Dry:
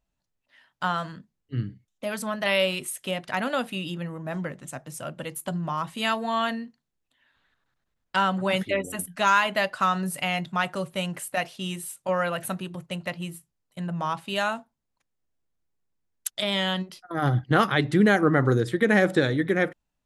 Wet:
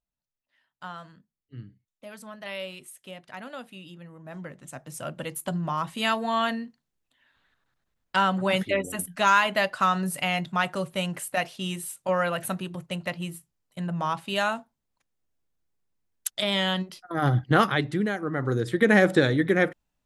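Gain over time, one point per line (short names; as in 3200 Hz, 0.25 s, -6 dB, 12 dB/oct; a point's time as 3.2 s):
4.03 s -12.5 dB
5.06 s +0.5 dB
17.65 s +0.5 dB
18.2 s -11 dB
18.82 s +1.5 dB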